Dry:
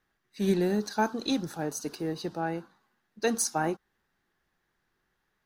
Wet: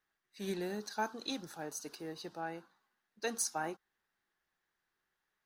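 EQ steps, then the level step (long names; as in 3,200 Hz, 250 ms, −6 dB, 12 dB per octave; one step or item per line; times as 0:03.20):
low-shelf EQ 400 Hz −10.5 dB
−6.0 dB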